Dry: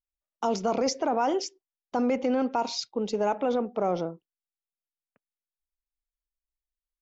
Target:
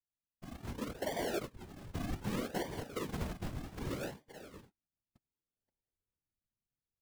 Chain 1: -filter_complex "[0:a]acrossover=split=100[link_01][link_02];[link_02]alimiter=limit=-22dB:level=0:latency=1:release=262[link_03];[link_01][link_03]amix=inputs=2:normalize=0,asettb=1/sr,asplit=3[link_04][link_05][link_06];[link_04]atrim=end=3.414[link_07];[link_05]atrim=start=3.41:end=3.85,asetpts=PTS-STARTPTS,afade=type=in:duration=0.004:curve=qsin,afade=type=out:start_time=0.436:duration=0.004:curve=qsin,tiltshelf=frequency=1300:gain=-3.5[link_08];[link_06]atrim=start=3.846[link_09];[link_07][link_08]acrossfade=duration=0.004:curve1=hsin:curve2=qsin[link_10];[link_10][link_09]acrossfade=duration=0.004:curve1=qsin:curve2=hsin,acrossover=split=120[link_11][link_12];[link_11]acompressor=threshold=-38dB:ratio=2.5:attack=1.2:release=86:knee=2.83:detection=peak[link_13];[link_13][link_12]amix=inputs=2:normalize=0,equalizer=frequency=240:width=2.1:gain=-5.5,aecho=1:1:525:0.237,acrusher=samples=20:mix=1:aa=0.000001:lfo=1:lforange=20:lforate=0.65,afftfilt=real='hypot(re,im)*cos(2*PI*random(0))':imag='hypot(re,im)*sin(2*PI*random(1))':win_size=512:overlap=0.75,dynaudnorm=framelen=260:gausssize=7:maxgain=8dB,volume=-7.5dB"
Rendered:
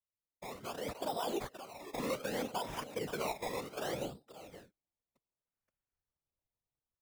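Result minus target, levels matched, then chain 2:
sample-and-hold swept by an LFO: distortion −26 dB
-filter_complex "[0:a]acrossover=split=100[link_01][link_02];[link_02]alimiter=limit=-22dB:level=0:latency=1:release=262[link_03];[link_01][link_03]amix=inputs=2:normalize=0,asettb=1/sr,asplit=3[link_04][link_05][link_06];[link_04]atrim=end=3.414[link_07];[link_05]atrim=start=3.41:end=3.85,asetpts=PTS-STARTPTS,afade=type=in:duration=0.004:curve=qsin,afade=type=out:start_time=0.436:duration=0.004:curve=qsin,tiltshelf=frequency=1300:gain=-3.5[link_08];[link_06]atrim=start=3.846[link_09];[link_07][link_08]acrossfade=duration=0.004:curve1=hsin:curve2=qsin[link_10];[link_10][link_09]acrossfade=duration=0.004:curve1=qsin:curve2=hsin,acrossover=split=120[link_11][link_12];[link_11]acompressor=threshold=-38dB:ratio=2.5:attack=1.2:release=86:knee=2.83:detection=peak[link_13];[link_13][link_12]amix=inputs=2:normalize=0,equalizer=frequency=240:width=2.1:gain=-5.5,aecho=1:1:525:0.237,acrusher=samples=66:mix=1:aa=0.000001:lfo=1:lforange=66:lforate=0.65,afftfilt=real='hypot(re,im)*cos(2*PI*random(0))':imag='hypot(re,im)*sin(2*PI*random(1))':win_size=512:overlap=0.75,dynaudnorm=framelen=260:gausssize=7:maxgain=8dB,volume=-7.5dB"

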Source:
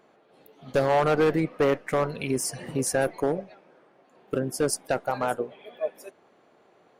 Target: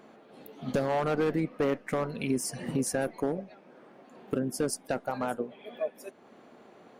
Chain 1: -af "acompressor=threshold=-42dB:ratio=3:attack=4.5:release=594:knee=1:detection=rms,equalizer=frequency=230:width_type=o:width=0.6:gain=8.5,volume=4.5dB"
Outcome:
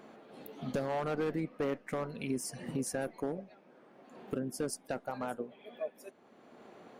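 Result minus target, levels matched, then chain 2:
downward compressor: peak gain reduction +6 dB
-af "acompressor=threshold=-33dB:ratio=3:attack=4.5:release=594:knee=1:detection=rms,equalizer=frequency=230:width_type=o:width=0.6:gain=8.5,volume=4.5dB"

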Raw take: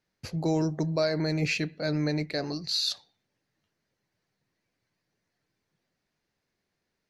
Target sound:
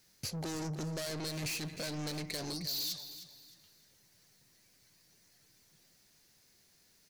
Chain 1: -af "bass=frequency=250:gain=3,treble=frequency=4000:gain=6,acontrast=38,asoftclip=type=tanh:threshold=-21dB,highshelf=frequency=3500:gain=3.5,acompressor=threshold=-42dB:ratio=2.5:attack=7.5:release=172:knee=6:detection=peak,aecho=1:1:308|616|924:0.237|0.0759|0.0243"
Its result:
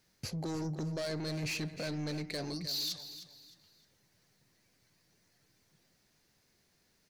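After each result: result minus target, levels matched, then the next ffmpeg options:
8,000 Hz band −4.5 dB; soft clipping: distortion −5 dB
-af "bass=frequency=250:gain=3,treble=frequency=4000:gain=6,acontrast=38,asoftclip=type=tanh:threshold=-21dB,highshelf=frequency=3500:gain=13,acompressor=threshold=-42dB:ratio=2.5:attack=7.5:release=172:knee=6:detection=peak,aecho=1:1:308|616|924:0.237|0.0759|0.0243"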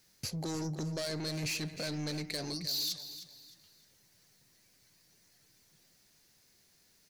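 soft clipping: distortion −5 dB
-af "bass=frequency=250:gain=3,treble=frequency=4000:gain=6,acontrast=38,asoftclip=type=tanh:threshold=-28.5dB,highshelf=frequency=3500:gain=13,acompressor=threshold=-42dB:ratio=2.5:attack=7.5:release=172:knee=6:detection=peak,aecho=1:1:308|616|924:0.237|0.0759|0.0243"

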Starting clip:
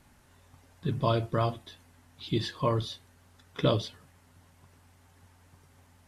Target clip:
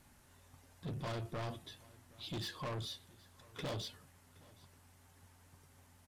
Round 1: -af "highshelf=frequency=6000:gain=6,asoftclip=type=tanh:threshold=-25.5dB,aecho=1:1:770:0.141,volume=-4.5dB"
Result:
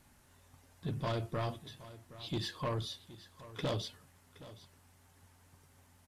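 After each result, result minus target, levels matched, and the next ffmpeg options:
echo-to-direct +6.5 dB; soft clipping: distortion −5 dB
-af "highshelf=frequency=6000:gain=6,asoftclip=type=tanh:threshold=-25.5dB,aecho=1:1:770:0.0668,volume=-4.5dB"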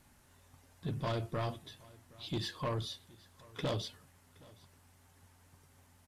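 soft clipping: distortion −5 dB
-af "highshelf=frequency=6000:gain=6,asoftclip=type=tanh:threshold=-33.5dB,aecho=1:1:770:0.0668,volume=-4.5dB"

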